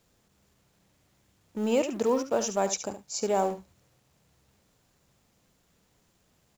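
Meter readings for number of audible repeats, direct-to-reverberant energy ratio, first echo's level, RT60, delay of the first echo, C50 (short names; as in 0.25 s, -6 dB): 1, none, -10.5 dB, none, 71 ms, none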